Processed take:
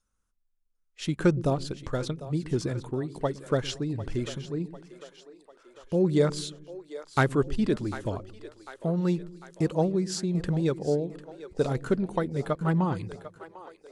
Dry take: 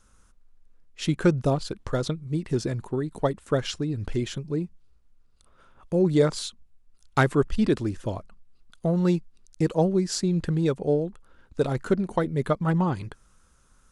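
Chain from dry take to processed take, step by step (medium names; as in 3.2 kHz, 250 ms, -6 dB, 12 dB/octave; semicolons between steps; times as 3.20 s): tremolo saw down 0.87 Hz, depth 30%; spectral noise reduction 18 dB; two-band feedback delay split 370 Hz, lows 115 ms, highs 748 ms, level -14 dB; trim -1.5 dB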